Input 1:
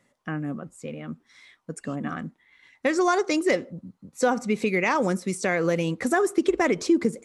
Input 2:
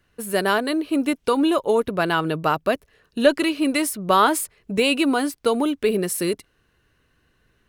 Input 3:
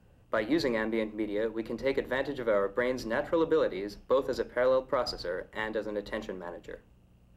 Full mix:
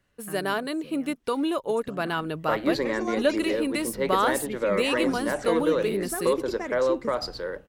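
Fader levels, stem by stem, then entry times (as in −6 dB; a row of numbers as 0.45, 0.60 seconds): −11.5, −7.0, +2.0 decibels; 0.00, 0.00, 2.15 seconds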